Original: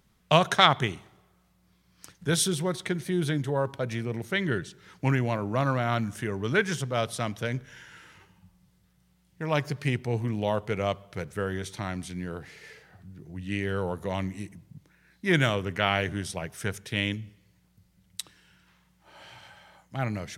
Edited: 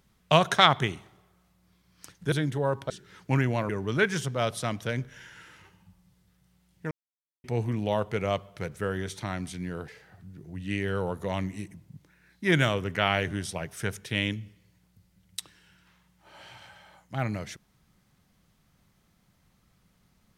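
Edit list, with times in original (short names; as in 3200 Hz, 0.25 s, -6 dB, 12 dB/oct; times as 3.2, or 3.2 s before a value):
2.32–3.24 cut
3.82–4.64 cut
5.43–6.25 cut
9.47–10 mute
12.44–12.69 cut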